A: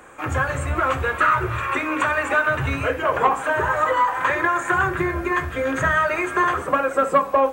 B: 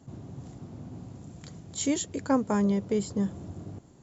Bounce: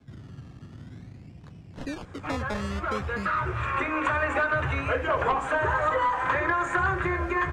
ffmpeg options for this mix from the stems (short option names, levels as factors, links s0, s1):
-filter_complex "[0:a]asoftclip=type=tanh:threshold=0.422,adelay=2050,volume=0.841[s0];[1:a]equalizer=f=5400:w=2.9:g=-10,acrusher=samples=23:mix=1:aa=0.000001:lfo=1:lforange=13.8:lforate=0.5,volume=0.531,asplit=2[s1][s2];[s2]apad=whole_len=422405[s3];[s0][s3]sidechaincompress=threshold=0.0158:ratio=8:attack=39:release=1060[s4];[s4][s1]amix=inputs=2:normalize=0,lowpass=6200,lowshelf=f=130:g=10,acrossover=split=100|430|2200[s5][s6][s7][s8];[s5]acompressor=threshold=0.02:ratio=4[s9];[s6]acompressor=threshold=0.0158:ratio=4[s10];[s7]acompressor=threshold=0.0708:ratio=4[s11];[s8]acompressor=threshold=0.01:ratio=4[s12];[s9][s10][s11][s12]amix=inputs=4:normalize=0"